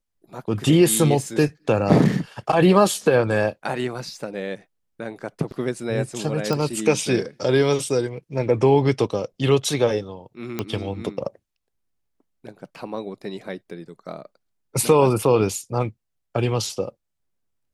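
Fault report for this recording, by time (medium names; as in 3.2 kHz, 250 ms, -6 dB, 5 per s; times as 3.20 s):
6.53 s: pop -11 dBFS
10.59 s: pop -11 dBFS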